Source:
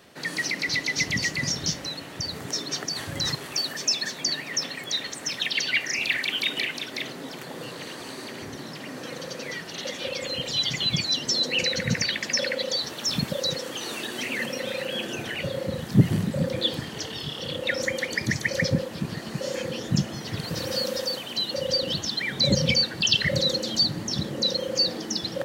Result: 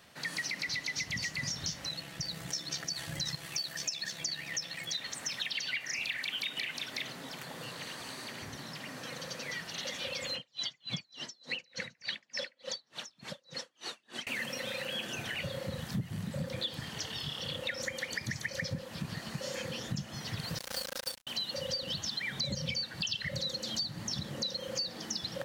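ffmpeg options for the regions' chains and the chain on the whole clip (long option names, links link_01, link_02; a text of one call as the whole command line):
ffmpeg -i in.wav -filter_complex "[0:a]asettb=1/sr,asplit=3[link_01][link_02][link_03];[link_01]atrim=end=1.894[link_04];[link_02]atrim=start=1.89:end=4.98,asetpts=PTS-STARTPTS,afade=type=in:duration=0.004:curve=qsin,afade=type=out:start_time=3.086:duration=0.004:curve=qsin,equalizer=frequency=1100:width_type=o:width=0.92:gain=-5.5,aecho=1:1:6:0.84,atrim=end_sample=136269,tremolo=f=68:d=0.462[link_05];[link_03]atrim=start=4.976[link_06];[link_04][link_05]acrossfade=duration=0.004:curve1=hsin:curve2=qsin[link_07];[link_07][link_06]acrossfade=duration=0.004:curve1=qsin:curve2=hsin,asettb=1/sr,asplit=3[link_08][link_09][link_10];[link_08]atrim=end=10.354[link_11];[link_09]atrim=start=10.35:end=14.27,asetpts=PTS-STARTPTS,afade=type=in:duration=0.004:curve=qsin,afade=type=out:start_time=3.916:duration=0.004:curve=qsin,aphaser=in_gain=1:out_gain=1:delay=3.1:decay=0.33:speed=1.6:type=sinusoidal,highpass=170,lowpass=7500,aeval=exprs='val(0)*pow(10,-40*(0.5-0.5*cos(2*PI*3.4*n/s))/20)':channel_layout=same[link_12];[link_10]atrim=start=14.266[link_13];[link_11][link_12]acrossfade=duration=0.004:curve1=hsin:curve2=qsin[link_14];[link_14][link_13]acrossfade=duration=0.004:curve1=qsin:curve2=hsin,asettb=1/sr,asplit=3[link_15][link_16][link_17];[link_15]atrim=end=20.584[link_18];[link_16]atrim=start=20.58:end=21.27,asetpts=PTS-STARTPTS,afade=type=in:duration=0.004:curve=qsin,afade=type=out:start_time=0.686:duration=0.004:curve=qsin,highpass=210,acrusher=bits=3:mix=0:aa=0.5[link_19];[link_17]atrim=start=21.266[link_20];[link_18][link_19]acrossfade=duration=0.004:curve1=hsin:curve2=qsin[link_21];[link_21][link_20]acrossfade=duration=0.004:curve1=qsin:curve2=hsin,equalizer=frequency=360:width_type=o:width=1.3:gain=-9.5,acompressor=threshold=-29dB:ratio=6,volume=-3.5dB" out.wav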